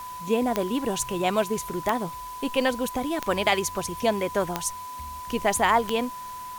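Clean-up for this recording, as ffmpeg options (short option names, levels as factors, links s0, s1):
-af "adeclick=t=4,bandreject=f=1000:w=30,afwtdn=0.0045"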